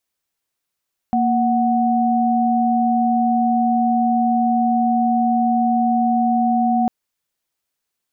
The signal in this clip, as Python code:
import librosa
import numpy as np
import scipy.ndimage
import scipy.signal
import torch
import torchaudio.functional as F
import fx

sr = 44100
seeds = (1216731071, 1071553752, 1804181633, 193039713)

y = fx.chord(sr, length_s=5.75, notes=(58, 78), wave='sine', level_db=-17.0)